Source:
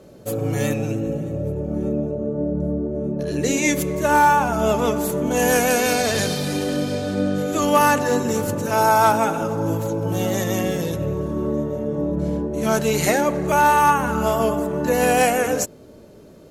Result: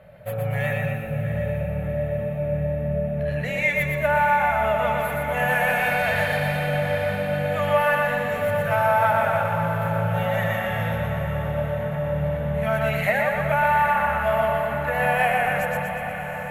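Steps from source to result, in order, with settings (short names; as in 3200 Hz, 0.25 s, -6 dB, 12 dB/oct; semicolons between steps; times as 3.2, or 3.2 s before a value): split-band echo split 330 Hz, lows 0.277 s, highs 0.12 s, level -3.5 dB; compressor 2.5:1, threshold -19 dBFS, peak gain reduction 7.5 dB; EQ curve 160 Hz 0 dB, 340 Hz -28 dB, 600 Hz +3 dB, 1100 Hz -3 dB, 1900 Hz +8 dB, 3300 Hz -4 dB, 6000 Hz -26 dB, 13000 Hz -6 dB; diffused feedback echo 0.743 s, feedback 64%, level -9.5 dB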